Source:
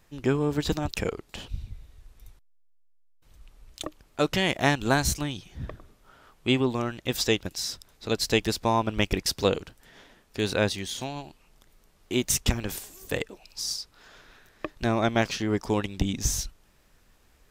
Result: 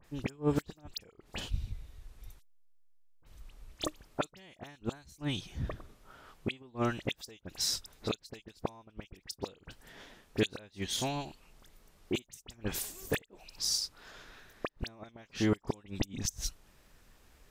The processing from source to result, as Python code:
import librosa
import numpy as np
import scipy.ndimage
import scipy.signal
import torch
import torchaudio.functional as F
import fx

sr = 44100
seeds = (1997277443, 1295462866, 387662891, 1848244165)

y = fx.gate_flip(x, sr, shuts_db=-16.0, range_db=-30)
y = fx.dispersion(y, sr, late='highs', ms=44.0, hz=2800.0)